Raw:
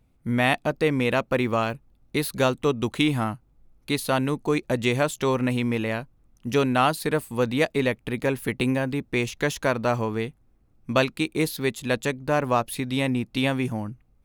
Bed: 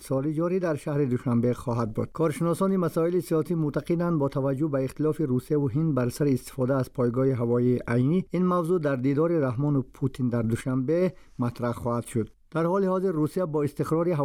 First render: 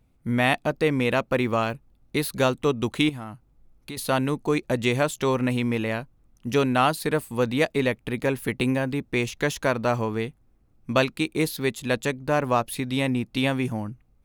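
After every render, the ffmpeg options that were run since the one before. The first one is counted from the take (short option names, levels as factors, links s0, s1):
-filter_complex "[0:a]asettb=1/sr,asplit=3[s0][s1][s2];[s0]atrim=end=3.094[s3];[s1]atrim=start=3.09:end=3.97,asetpts=PTS-STARTPTS,afade=t=in:d=0.004:c=qsin,afade=t=out:st=0.876:d=0.004:c=qsin,acompressor=threshold=0.0178:ratio=3:attack=3.2:release=140:knee=1:detection=peak[s4];[s2]atrim=start=3.966[s5];[s3][s4]acrossfade=d=0.004:c1=hsin:c2=qsin[s6];[s6][s5]acrossfade=d=0.004:c1=qsin:c2=hsin"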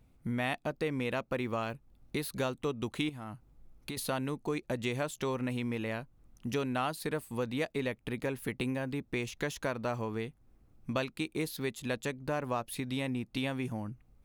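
-af "acompressor=threshold=0.0112:ratio=2"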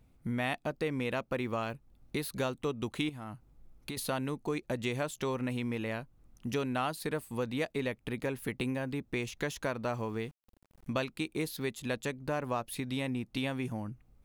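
-filter_complex "[0:a]asettb=1/sr,asplit=3[s0][s1][s2];[s0]atrim=end=9.984[s3];[s1]atrim=start=9.98:end=10.9,asetpts=PTS-STARTPTS,afade=t=in:d=0.004:c=qsin,afade=t=out:st=0.916:d=0.004:c=qsin,aeval=exprs='val(0)*gte(abs(val(0)),0.0015)':c=same[s4];[s2]atrim=start=10.896[s5];[s3][s4]acrossfade=d=0.004:c1=hsin:c2=qsin[s6];[s6][s5]acrossfade=d=0.004:c1=qsin:c2=hsin"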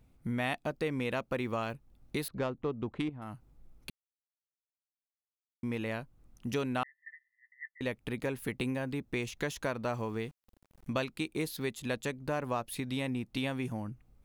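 -filter_complex "[0:a]asettb=1/sr,asplit=3[s0][s1][s2];[s0]atrim=end=2.284[s3];[s1]atrim=start=2.28:end=3.22,asetpts=PTS-STARTPTS,afade=t=in:d=0.004:c=qsin,afade=t=out:st=0.936:d=0.004:c=qsin,adynamicsmooth=sensitivity=1.5:basefreq=1300[s4];[s2]atrim=start=3.216[s5];[s3][s4]acrossfade=d=0.004:c1=hsin:c2=qsin[s6];[s6][s5]acrossfade=d=0.004:c1=qsin:c2=hsin,asettb=1/sr,asplit=3[s7][s8][s9];[s7]atrim=end=6.834[s10];[s8]atrim=start=6.83:end=7.81,asetpts=PTS-STARTPTS,afade=t=in:d=0.004:c=qsin,afade=t=out:st=0.976:d=0.004:c=qsin,asuperpass=centerf=1900:order=20:qfactor=6.4[s11];[s9]atrim=start=7.806[s12];[s10][s11]acrossfade=d=0.004:c1=hsin:c2=qsin[s13];[s13][s12]acrossfade=d=0.004:c1=qsin:c2=hsin,asplit=3[s14][s15][s16];[s14]atrim=end=3.9,asetpts=PTS-STARTPTS,afade=t=out:st=3.896:d=0.004:c=hsin[s17];[s15]atrim=start=3.9:end=5.63,asetpts=PTS-STARTPTS,volume=0[s18];[s16]atrim=start=5.63,asetpts=PTS-STARTPTS,afade=t=in:d=0.004:c=hsin[s19];[s17][s18][s19]concat=n=3:v=0:a=1"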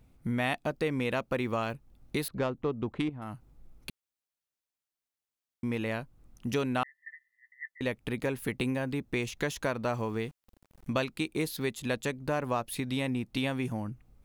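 -af "volume=1.41"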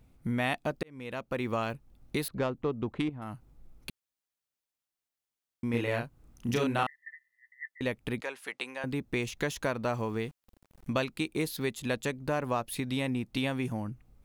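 -filter_complex "[0:a]asettb=1/sr,asplit=3[s0][s1][s2];[s0]atrim=end=5.704[s3];[s1]atrim=start=5.7:end=6.96,asetpts=PTS-STARTPTS,afade=t=in:d=0.004:c=qsin,afade=t=out:st=1.256:d=0.004:c=qsin,asplit=2[s4][s5];[s5]adelay=34,volume=0.794[s6];[s4][s6]amix=inputs=2:normalize=0,atrim=end_sample=55566[s7];[s2]atrim=start=6.956[s8];[s3][s7]acrossfade=d=0.004:c1=hsin:c2=qsin[s9];[s9][s8]acrossfade=d=0.004:c1=qsin:c2=hsin,asettb=1/sr,asplit=3[s10][s11][s12];[s10]atrim=end=8.214[s13];[s11]atrim=start=8.21:end=8.84,asetpts=PTS-STARTPTS,afade=t=in:d=0.004:c=qsin,afade=t=out:st=0.626:d=0.004:c=qsin,highpass=710,lowpass=8000[s14];[s12]atrim=start=8.836[s15];[s13][s14]acrossfade=d=0.004:c1=hsin:c2=qsin[s16];[s16][s15]acrossfade=d=0.004:c1=qsin:c2=hsin,asplit=2[s17][s18];[s17]atrim=end=0.83,asetpts=PTS-STARTPTS,afade=t=out:st=0.826:d=0.004:c=hsin[s19];[s18]atrim=start=0.83,asetpts=PTS-STARTPTS,afade=t=in:d=0.69[s20];[s19][s20]concat=n=2:v=0:a=1"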